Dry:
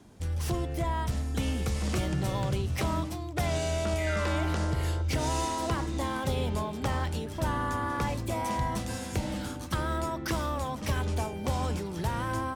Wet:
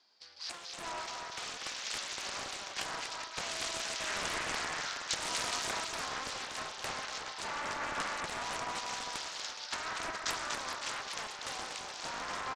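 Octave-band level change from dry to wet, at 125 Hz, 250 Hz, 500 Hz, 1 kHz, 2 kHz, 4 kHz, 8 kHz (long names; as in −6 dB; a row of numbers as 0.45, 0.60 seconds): −27.0, −18.5, −11.5, −5.5, 0.0, +3.0, +1.5 decibels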